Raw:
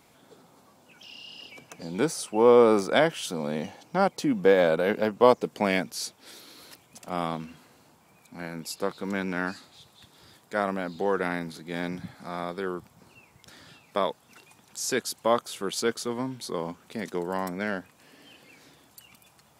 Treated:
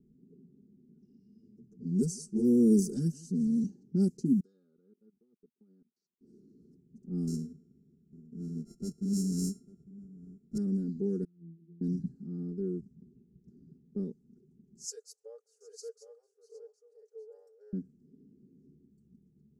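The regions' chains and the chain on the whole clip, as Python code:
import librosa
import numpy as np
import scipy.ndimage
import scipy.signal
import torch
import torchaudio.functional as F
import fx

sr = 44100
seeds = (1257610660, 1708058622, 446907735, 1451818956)

y = fx.chain(x, sr, fx.bass_treble(bass_db=4, treble_db=5),
    fx.env_flanger(rest_ms=10.7, full_db=-13.0),
    fx.echo_single(ms=164, db=-22.5), at=(1.19, 3.64))
y = fx.chain(y, sr, fx.double_bandpass(hz=2200.0, octaves=1.5),
    fx.level_steps(step_db=24), at=(4.4, 6.21))
y = fx.chain(y, sr, fx.sample_sort(block=64),
    fx.high_shelf(hz=3900.0, db=6.0),
    fx.echo_single(ms=852, db=-19.0), at=(7.27, 10.58))
y = fx.chain(y, sr, fx.highpass(hz=630.0, slope=6),
    fx.over_compress(threshold_db=-39.0, ratio=-1.0),
    fx.octave_resonator(note='E', decay_s=0.32), at=(11.24, 11.81))
y = fx.chain(y, sr, fx.brickwall_highpass(low_hz=430.0),
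    fx.echo_single(ms=764, db=-7.5), at=(14.84, 17.73))
y = scipy.signal.sosfilt(scipy.signal.cheby2(4, 40, [600.0, 3600.0], 'bandstop', fs=sr, output='sos'), y)
y = fx.env_lowpass(y, sr, base_hz=810.0, full_db=-25.5)
y = y + 0.8 * np.pad(y, (int(4.9 * sr / 1000.0), 0))[:len(y)]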